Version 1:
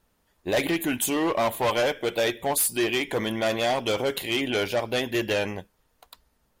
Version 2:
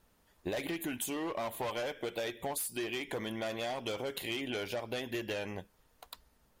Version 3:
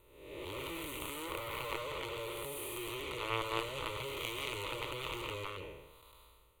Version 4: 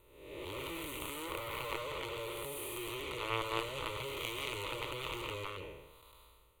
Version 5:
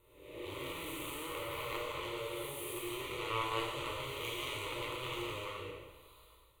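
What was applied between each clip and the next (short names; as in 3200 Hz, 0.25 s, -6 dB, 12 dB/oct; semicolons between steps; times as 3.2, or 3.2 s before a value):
compressor 10:1, threshold -34 dBFS, peak gain reduction 14 dB
time blur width 0.405 s; added harmonics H 3 -9 dB, 7 -26 dB, 8 -31 dB, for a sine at -26 dBFS; fixed phaser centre 1100 Hz, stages 8; gain +15 dB
nothing audible
plate-style reverb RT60 1 s, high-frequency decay 0.95×, DRR -3 dB; gain -5 dB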